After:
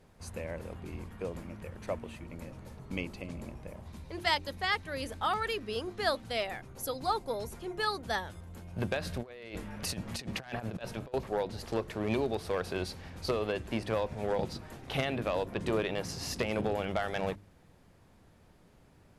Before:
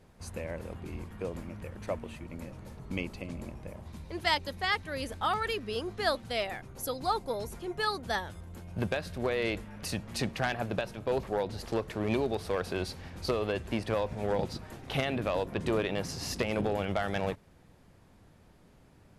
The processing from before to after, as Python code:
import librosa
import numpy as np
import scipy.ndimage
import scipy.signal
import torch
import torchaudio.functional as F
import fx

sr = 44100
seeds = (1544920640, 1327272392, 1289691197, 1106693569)

y = fx.hum_notches(x, sr, base_hz=50, count=7)
y = fx.over_compress(y, sr, threshold_db=-37.0, ratio=-0.5, at=(9.01, 11.14))
y = F.gain(torch.from_numpy(y), -1.0).numpy()